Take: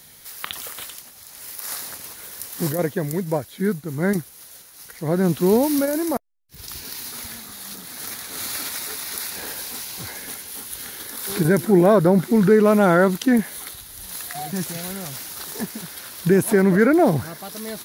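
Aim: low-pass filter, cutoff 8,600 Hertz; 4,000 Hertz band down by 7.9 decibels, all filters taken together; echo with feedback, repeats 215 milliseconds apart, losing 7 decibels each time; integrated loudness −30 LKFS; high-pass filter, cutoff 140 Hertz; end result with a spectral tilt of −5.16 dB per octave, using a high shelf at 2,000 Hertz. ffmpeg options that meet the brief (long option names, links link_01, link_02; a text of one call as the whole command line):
ffmpeg -i in.wav -af "highpass=140,lowpass=8600,highshelf=frequency=2000:gain=-4.5,equalizer=frequency=4000:width_type=o:gain=-5,aecho=1:1:215|430|645|860|1075:0.447|0.201|0.0905|0.0407|0.0183,volume=-10.5dB" out.wav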